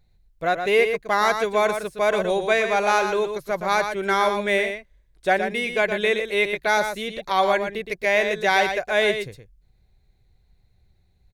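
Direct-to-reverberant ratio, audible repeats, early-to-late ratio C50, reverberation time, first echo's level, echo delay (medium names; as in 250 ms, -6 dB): no reverb, 1, no reverb, no reverb, -7.5 dB, 118 ms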